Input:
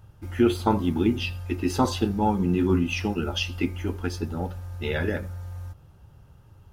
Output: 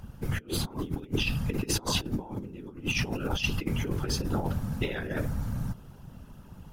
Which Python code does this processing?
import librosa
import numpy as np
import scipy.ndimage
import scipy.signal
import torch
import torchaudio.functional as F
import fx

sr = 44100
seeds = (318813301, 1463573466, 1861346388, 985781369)

y = fx.high_shelf(x, sr, hz=6600.0, db=3.5)
y = fx.over_compress(y, sr, threshold_db=-30.0, ratio=-0.5)
y = fx.whisperise(y, sr, seeds[0])